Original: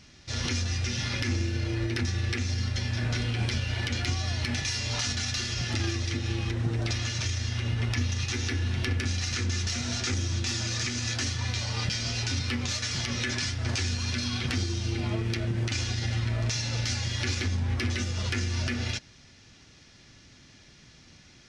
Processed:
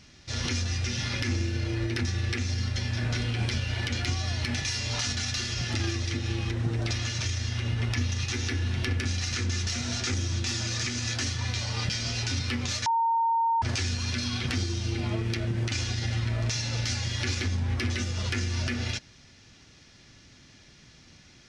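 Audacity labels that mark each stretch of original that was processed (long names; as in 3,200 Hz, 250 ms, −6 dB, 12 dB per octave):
12.860000	13.620000	beep over 917 Hz −21.5 dBFS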